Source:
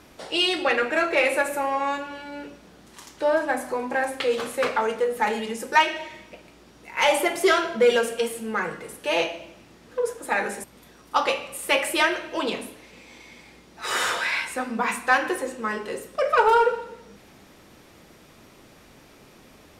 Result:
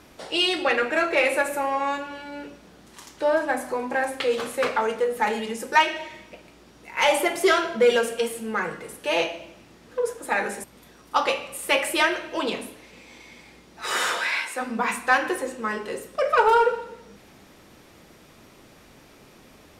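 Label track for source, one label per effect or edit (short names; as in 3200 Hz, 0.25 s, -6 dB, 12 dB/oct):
13.890000	14.600000	HPF 110 Hz -> 380 Hz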